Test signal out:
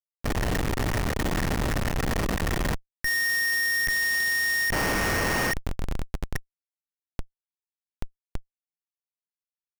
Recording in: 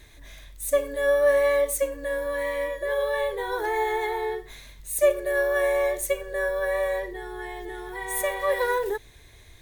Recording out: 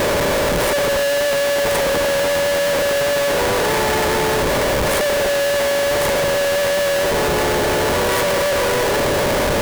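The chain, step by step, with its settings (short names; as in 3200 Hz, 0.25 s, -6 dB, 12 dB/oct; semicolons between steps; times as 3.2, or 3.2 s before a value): per-bin compression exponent 0.2; Schmitt trigger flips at -20.5 dBFS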